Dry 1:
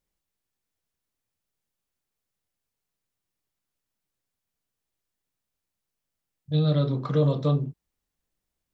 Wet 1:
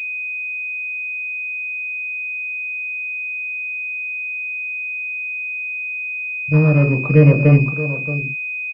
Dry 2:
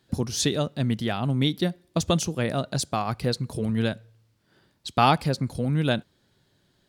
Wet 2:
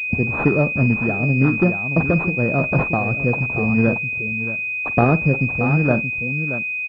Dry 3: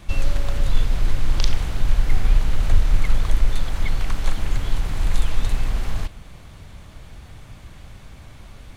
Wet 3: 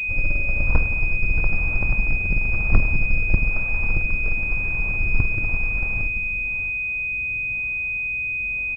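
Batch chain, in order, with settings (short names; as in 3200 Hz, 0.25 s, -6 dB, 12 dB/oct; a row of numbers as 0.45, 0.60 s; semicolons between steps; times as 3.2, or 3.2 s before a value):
added harmonics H 3 -10 dB, 5 -17 dB, 6 -14 dB, 8 -17 dB, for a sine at -3.5 dBFS; on a send: tapped delay 49/627 ms -16/-10.5 dB; on the sum: rotary speaker horn 1 Hz; pulse-width modulation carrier 2500 Hz; normalise peaks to -1.5 dBFS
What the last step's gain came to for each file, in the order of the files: +14.5, +11.5, +1.5 dB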